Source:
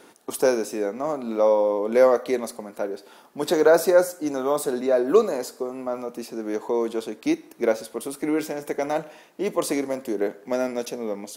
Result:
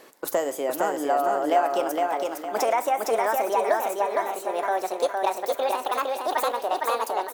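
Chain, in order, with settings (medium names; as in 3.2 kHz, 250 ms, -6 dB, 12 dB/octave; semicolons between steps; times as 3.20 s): gliding tape speed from 122% -> 188%; compression, threshold -20 dBFS, peak gain reduction 9 dB; feedback delay 460 ms, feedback 36%, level -3 dB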